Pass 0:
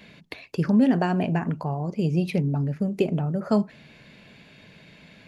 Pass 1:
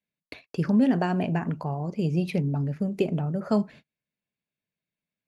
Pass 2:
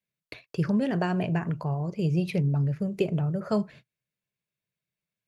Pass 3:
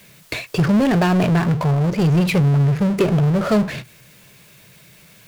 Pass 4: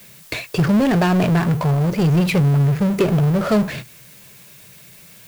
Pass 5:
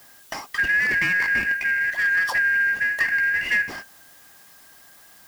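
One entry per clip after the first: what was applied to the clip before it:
gate -41 dBFS, range -40 dB; gain -2 dB
thirty-one-band EQ 125 Hz +7 dB, 250 Hz -11 dB, 800 Hz -5 dB
power-law curve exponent 0.5; gain +4.5 dB
added noise blue -47 dBFS
four-band scrambler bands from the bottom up 2143; gain -5.5 dB

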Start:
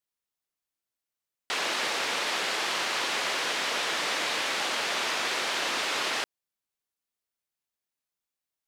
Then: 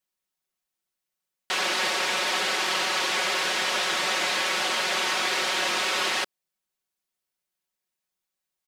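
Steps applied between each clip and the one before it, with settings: comb 5.4 ms, depth 76%; gain +1.5 dB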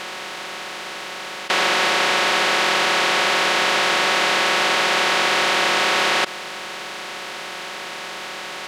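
per-bin compression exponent 0.2; high shelf 3700 Hz -7.5 dB; gain +3.5 dB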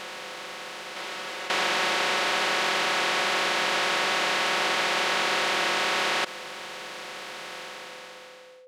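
ending faded out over 1.12 s; reverse echo 0.536 s -12.5 dB; whine 510 Hz -41 dBFS; gain -7 dB

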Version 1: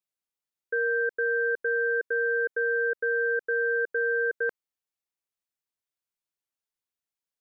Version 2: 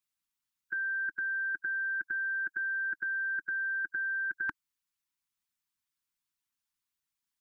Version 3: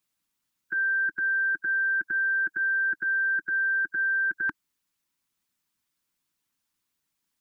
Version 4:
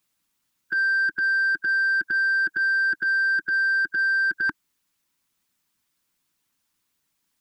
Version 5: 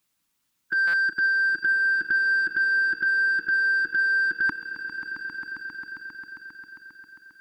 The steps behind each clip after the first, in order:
elliptic band-stop 310–900 Hz, stop band 40 dB; harmonic-percussive split harmonic -10 dB; gain +7 dB
bell 260 Hz +6.5 dB 2.3 oct; limiter -28.5 dBFS, peak gain reduction 5.5 dB; gain +7 dB
soft clip -22.5 dBFS, distortion -23 dB; gain +5.5 dB
swelling echo 0.134 s, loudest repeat 5, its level -13.5 dB; stuck buffer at 0.87, samples 256, times 10

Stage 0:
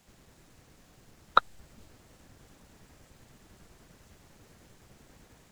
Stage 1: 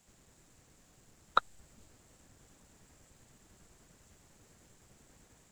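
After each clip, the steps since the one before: bell 7500 Hz +9.5 dB 0.44 oct; gain -6 dB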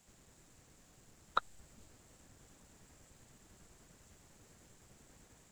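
limiter -14.5 dBFS, peak gain reduction 6 dB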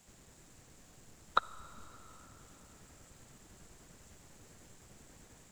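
digital reverb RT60 4.1 s, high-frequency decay 0.85×, pre-delay 15 ms, DRR 17 dB; gain +4 dB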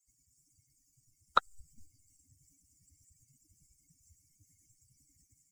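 per-bin expansion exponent 3; gain +4 dB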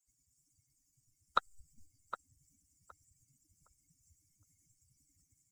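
tape echo 0.764 s, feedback 21%, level -8.5 dB, low-pass 1600 Hz; gain -4.5 dB

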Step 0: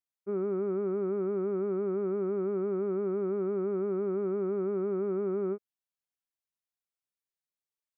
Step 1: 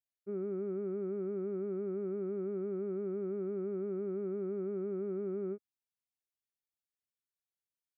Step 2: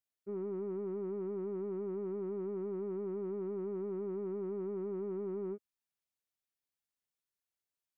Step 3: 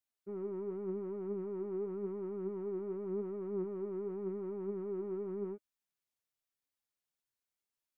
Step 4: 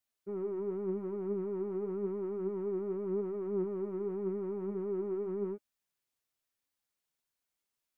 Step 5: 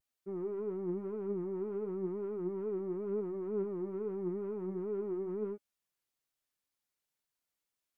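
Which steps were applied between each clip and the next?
fifteen-band EQ 100 Hz +7 dB, 250 Hz +3 dB, 1000 Hz -11 dB; gain -6.5 dB
soft clip -31.5 dBFS, distortion -20 dB
flange 0.89 Hz, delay 3 ms, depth 5.7 ms, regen +64%; gain +3.5 dB
flange 0.35 Hz, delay 1.5 ms, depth 3.1 ms, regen -83%; gain +8 dB
wow and flutter 100 cents; gain -1.5 dB

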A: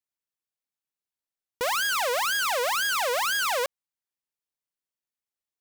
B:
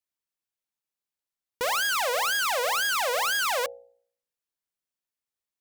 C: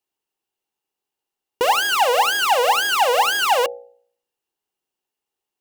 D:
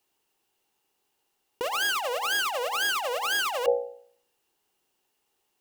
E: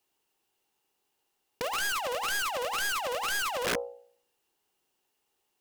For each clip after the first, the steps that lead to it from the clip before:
de-hum 60.41 Hz, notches 14
small resonant body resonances 390/800/2800 Hz, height 13 dB, ringing for 20 ms; gain +3.5 dB
negative-ratio compressor -28 dBFS, ratio -1
wrapped overs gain 20.5 dB; Doppler distortion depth 0.3 ms; gain -2.5 dB

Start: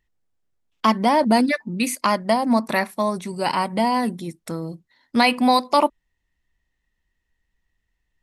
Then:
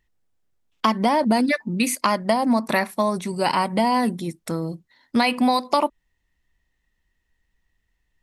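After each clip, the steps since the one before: compressor, threshold -18 dBFS, peak gain reduction 6.5 dB; gain +2.5 dB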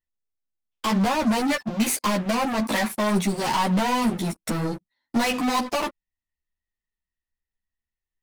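sample leveller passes 5; soft clip -11 dBFS, distortion -17 dB; ensemble effect; gain -6.5 dB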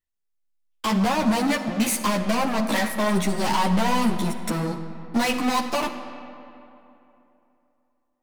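digital reverb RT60 3 s, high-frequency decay 0.6×, pre-delay 15 ms, DRR 9 dB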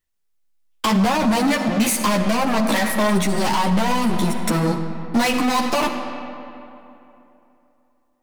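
limiter -19 dBFS, peak gain reduction 8 dB; gain +8 dB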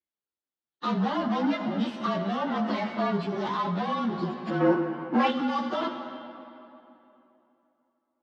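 inharmonic rescaling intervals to 108%; spectral gain 4.6–5.31, 240–3000 Hz +7 dB; speaker cabinet 150–3800 Hz, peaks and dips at 170 Hz -3 dB, 340 Hz +4 dB, 2400 Hz -10 dB; gain -5.5 dB

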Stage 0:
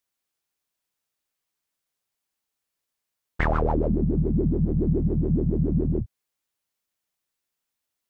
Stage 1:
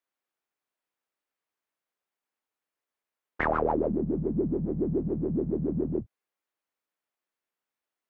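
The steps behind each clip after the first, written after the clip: three-band isolator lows -15 dB, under 220 Hz, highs -12 dB, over 2500 Hz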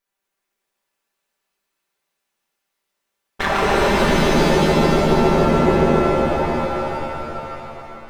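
minimum comb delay 5.1 ms; shimmer reverb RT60 3.3 s, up +7 st, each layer -2 dB, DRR -3.5 dB; gain +7 dB

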